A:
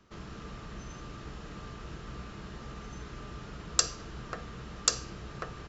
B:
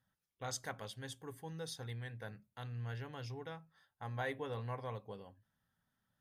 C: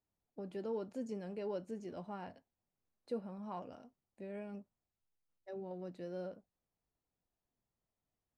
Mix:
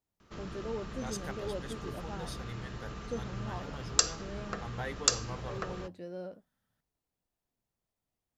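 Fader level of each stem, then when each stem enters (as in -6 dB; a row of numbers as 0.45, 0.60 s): +0.5, 0.0, +1.5 dB; 0.20, 0.60, 0.00 s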